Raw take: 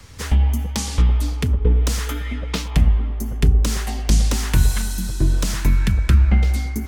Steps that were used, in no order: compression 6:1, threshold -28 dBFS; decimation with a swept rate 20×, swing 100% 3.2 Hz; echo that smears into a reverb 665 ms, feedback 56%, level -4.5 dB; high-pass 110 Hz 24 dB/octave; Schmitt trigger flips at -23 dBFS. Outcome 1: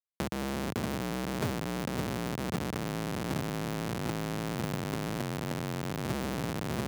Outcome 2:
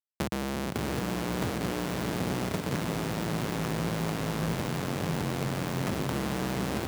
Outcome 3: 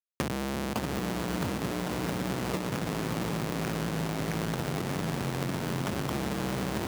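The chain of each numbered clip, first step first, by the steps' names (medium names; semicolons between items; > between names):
echo that smears into a reverb > decimation with a swept rate > Schmitt trigger > compression > high-pass; decimation with a swept rate > Schmitt trigger > high-pass > compression > echo that smears into a reverb; Schmitt trigger > echo that smears into a reverb > decimation with a swept rate > high-pass > compression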